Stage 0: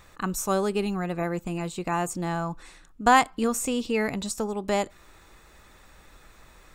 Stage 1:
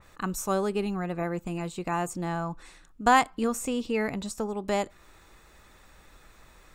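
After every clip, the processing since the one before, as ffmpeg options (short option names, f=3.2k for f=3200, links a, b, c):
-af "adynamicequalizer=threshold=0.00708:dfrequency=2700:dqfactor=0.7:tfrequency=2700:tqfactor=0.7:attack=5:release=100:ratio=0.375:range=2.5:mode=cutabove:tftype=highshelf,volume=-2dB"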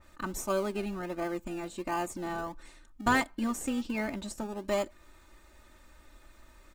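-filter_complex "[0:a]aecho=1:1:3.3:0.86,asplit=2[a][b];[b]acrusher=samples=33:mix=1:aa=0.000001:lfo=1:lforange=19.8:lforate=1.4,volume=-11dB[c];[a][c]amix=inputs=2:normalize=0,volume=-6.5dB"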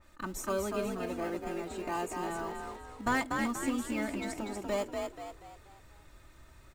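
-filter_complex "[0:a]asoftclip=type=tanh:threshold=-17dB,asplit=2[a][b];[b]asplit=5[c][d][e][f][g];[c]adelay=241,afreqshift=44,volume=-4dB[h];[d]adelay=482,afreqshift=88,volume=-11.7dB[i];[e]adelay=723,afreqshift=132,volume=-19.5dB[j];[f]adelay=964,afreqshift=176,volume=-27.2dB[k];[g]adelay=1205,afreqshift=220,volume=-35dB[l];[h][i][j][k][l]amix=inputs=5:normalize=0[m];[a][m]amix=inputs=2:normalize=0,volume=-2.5dB"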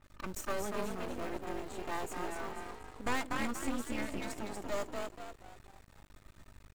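-af "aeval=exprs='val(0)+0.00126*(sin(2*PI*50*n/s)+sin(2*PI*2*50*n/s)/2+sin(2*PI*3*50*n/s)/3+sin(2*PI*4*50*n/s)/4+sin(2*PI*5*50*n/s)/5)':c=same,aeval=exprs='max(val(0),0)':c=same,volume=1dB"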